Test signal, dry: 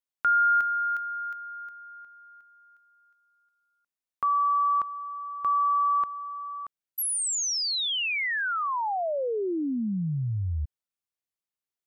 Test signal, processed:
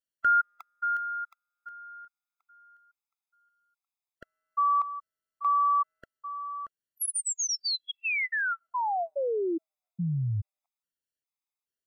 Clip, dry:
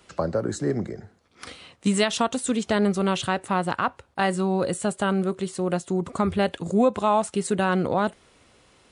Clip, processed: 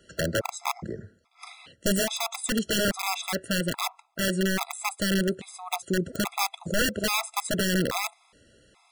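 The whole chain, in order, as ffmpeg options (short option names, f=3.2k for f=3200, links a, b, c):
-af "aeval=exprs='(mod(6.68*val(0)+1,2)-1)/6.68':c=same,afftfilt=real='re*gt(sin(2*PI*1.2*pts/sr)*(1-2*mod(floor(b*sr/1024/670),2)),0)':imag='im*gt(sin(2*PI*1.2*pts/sr)*(1-2*mod(floor(b*sr/1024/670),2)),0)':win_size=1024:overlap=0.75"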